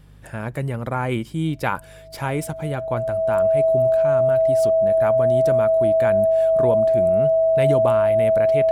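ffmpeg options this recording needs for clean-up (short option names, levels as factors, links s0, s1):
-af "bandreject=f=50.7:t=h:w=4,bandreject=f=101.4:t=h:w=4,bandreject=f=152.1:t=h:w=4,bandreject=f=650:w=30"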